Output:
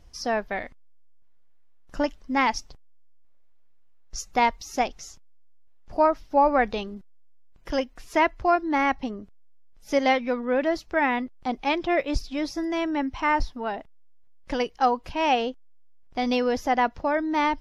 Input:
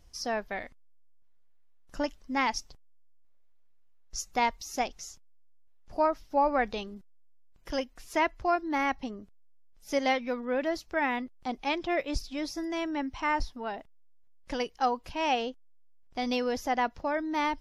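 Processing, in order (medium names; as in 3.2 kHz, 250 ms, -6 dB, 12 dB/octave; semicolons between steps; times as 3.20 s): treble shelf 5.2 kHz -8.5 dB; trim +6 dB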